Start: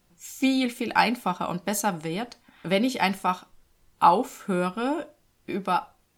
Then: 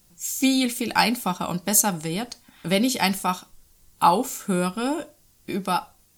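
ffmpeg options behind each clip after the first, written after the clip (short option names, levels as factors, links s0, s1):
-af "bass=f=250:g=5,treble=f=4000:g=13"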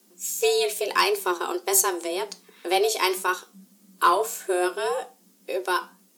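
-af "flanger=delay=8.2:depth=4.3:regen=77:speed=1.8:shape=triangular,afreqshift=180,asoftclip=type=tanh:threshold=0.251,volume=1.58"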